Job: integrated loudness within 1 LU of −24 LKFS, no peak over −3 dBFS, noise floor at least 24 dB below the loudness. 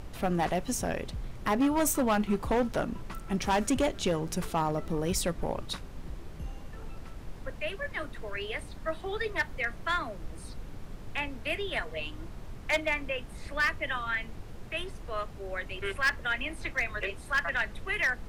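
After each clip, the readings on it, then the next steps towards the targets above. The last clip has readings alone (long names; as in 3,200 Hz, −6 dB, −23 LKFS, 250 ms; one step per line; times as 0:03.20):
share of clipped samples 0.9%; peaks flattened at −21.0 dBFS; background noise floor −44 dBFS; target noise floor −56 dBFS; integrated loudness −31.5 LKFS; sample peak −21.0 dBFS; target loudness −24.0 LKFS
→ clipped peaks rebuilt −21 dBFS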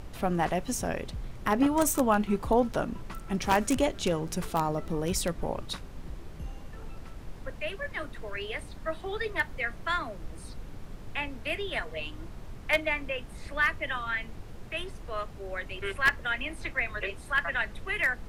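share of clipped samples 0.0%; background noise floor −44 dBFS; target noise floor −55 dBFS
→ noise reduction from a noise print 11 dB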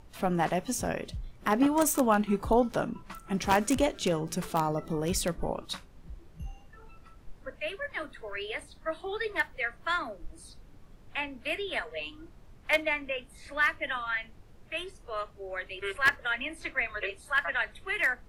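background noise floor −54 dBFS; target noise floor −55 dBFS
→ noise reduction from a noise print 6 dB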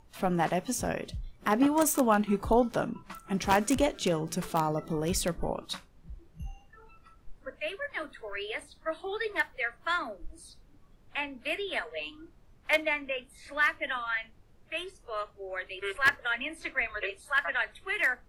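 background noise floor −59 dBFS; integrated loudness −30.5 LKFS; sample peak −11.5 dBFS; target loudness −24.0 LKFS
→ level +6.5 dB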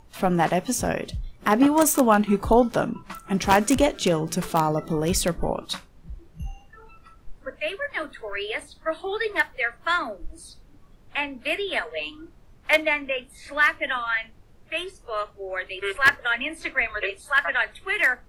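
integrated loudness −24.0 LKFS; sample peak −5.0 dBFS; background noise floor −53 dBFS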